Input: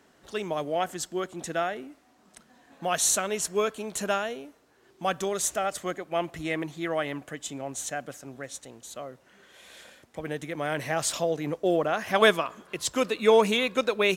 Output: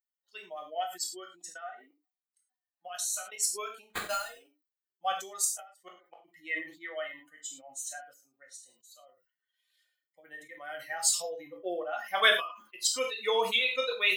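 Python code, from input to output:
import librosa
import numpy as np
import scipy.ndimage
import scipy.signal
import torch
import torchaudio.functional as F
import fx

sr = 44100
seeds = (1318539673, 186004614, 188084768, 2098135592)

y = fx.bin_expand(x, sr, power=2.0)
y = fx.level_steps(y, sr, step_db=20, at=(1.49, 3.38))
y = fx.dynamic_eq(y, sr, hz=1100.0, q=1.5, threshold_db=-46.0, ratio=4.0, max_db=-4)
y = fx.gate_flip(y, sr, shuts_db=-32.0, range_db=-37, at=(5.44, 6.24), fade=0.02)
y = scipy.signal.sosfilt(scipy.signal.butter(2, 610.0, 'highpass', fs=sr, output='sos'), y)
y = fx.tilt_eq(y, sr, slope=2.0)
y = fx.sample_hold(y, sr, seeds[0], rate_hz=5600.0, jitter_pct=0, at=(3.9, 4.41))
y = fx.rev_gated(y, sr, seeds[1], gate_ms=130, shape='falling', drr_db=2.0)
y = fx.sustainer(y, sr, db_per_s=120.0)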